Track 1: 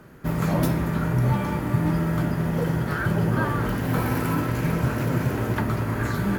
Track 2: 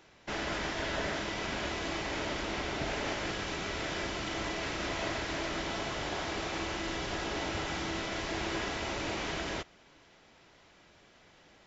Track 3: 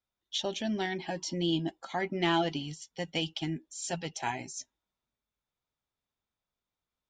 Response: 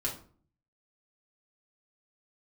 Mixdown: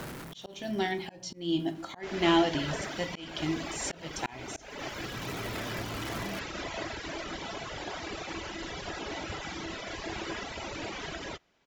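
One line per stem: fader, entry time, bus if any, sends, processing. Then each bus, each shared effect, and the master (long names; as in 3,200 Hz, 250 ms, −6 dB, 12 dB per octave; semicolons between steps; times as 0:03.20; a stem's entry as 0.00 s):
−16.5 dB, 0.00 s, send −23 dB, sign of each sample alone; harmonic generator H 5 −18 dB, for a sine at −23.5 dBFS; automatic ducking −22 dB, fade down 1.25 s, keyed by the third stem
+1.0 dB, 1.75 s, no send, reverb reduction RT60 1.9 s
−1.0 dB, 0.00 s, send −7 dB, no processing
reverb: on, RT60 0.45 s, pre-delay 3 ms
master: low-shelf EQ 76 Hz −2.5 dB; volume swells 328 ms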